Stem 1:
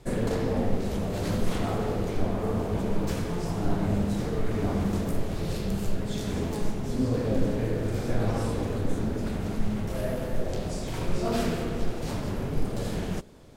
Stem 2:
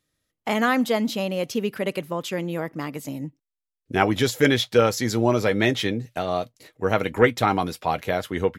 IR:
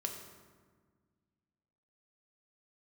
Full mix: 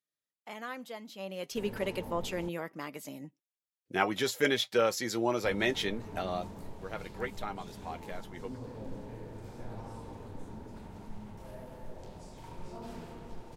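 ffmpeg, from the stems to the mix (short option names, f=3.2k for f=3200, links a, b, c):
-filter_complex "[0:a]equalizer=f=910:t=o:w=0.25:g=14,acrossover=split=490[a][b];[b]acompressor=threshold=-29dB:ratio=6[c];[a][c]amix=inputs=2:normalize=0,adelay=1500,volume=-17dB,asplit=3[d][e][f];[d]atrim=end=2.49,asetpts=PTS-STARTPTS,afade=t=out:st=2.486:d=0.004:c=hsin[g];[e]atrim=start=2.49:end=5.44,asetpts=PTS-STARTPTS,volume=0[h];[f]atrim=start=5.44,asetpts=PTS-STARTPTS,afade=t=in:d=0.004:c=hsin[i];[g][h][i]concat=n=3:v=0:a=1[j];[1:a]highpass=f=340:p=1,flanger=delay=4.9:depth=1:regen=65:speed=0.67:shape=sinusoidal,volume=-2.5dB,afade=t=in:st=1.17:d=0.4:silence=0.266073,afade=t=out:st=6.24:d=0.39:silence=0.298538[k];[j][k]amix=inputs=2:normalize=0"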